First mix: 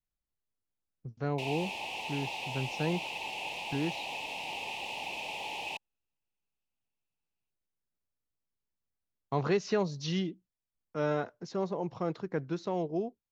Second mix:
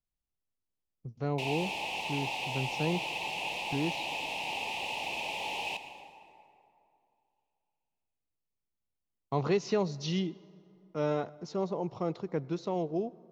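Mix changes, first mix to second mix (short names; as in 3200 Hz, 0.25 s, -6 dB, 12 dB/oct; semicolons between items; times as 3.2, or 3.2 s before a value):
speech: add bell 1600 Hz -8 dB 0.41 oct; reverb: on, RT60 2.7 s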